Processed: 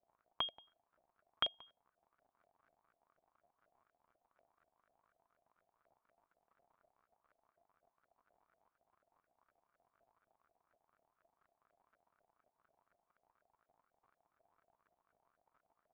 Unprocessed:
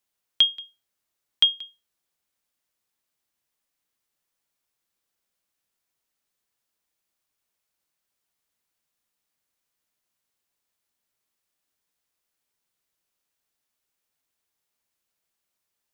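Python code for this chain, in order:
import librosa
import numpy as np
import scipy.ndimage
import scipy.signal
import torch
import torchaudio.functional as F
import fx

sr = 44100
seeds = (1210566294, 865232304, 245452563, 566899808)

y = fx.dmg_crackle(x, sr, seeds[0], per_s=87.0, level_db=-54.0)
y = fx.filter_lfo_lowpass(y, sr, shape='saw_up', hz=4.1, low_hz=590.0, high_hz=1500.0, q=5.4)
y = fx.small_body(y, sr, hz=(680.0, 2300.0), ring_ms=45, db=7)
y = F.gain(torch.from_numpy(y), -4.0).numpy()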